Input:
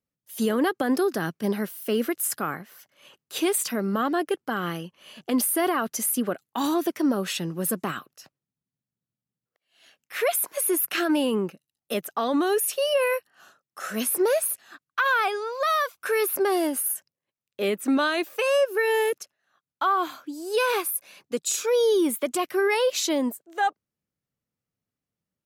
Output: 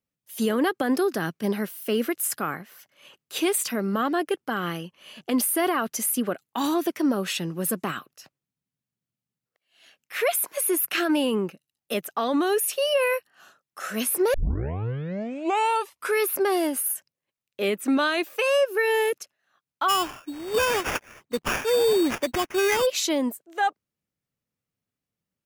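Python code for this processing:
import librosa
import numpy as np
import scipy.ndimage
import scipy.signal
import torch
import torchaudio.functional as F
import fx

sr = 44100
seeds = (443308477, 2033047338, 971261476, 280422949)

y = fx.sample_hold(x, sr, seeds[0], rate_hz=4100.0, jitter_pct=0, at=(19.88, 22.85), fade=0.02)
y = fx.edit(y, sr, fx.tape_start(start_s=14.34, length_s=1.86), tone=tone)
y = fx.peak_eq(y, sr, hz=2500.0, db=2.5, octaves=0.77)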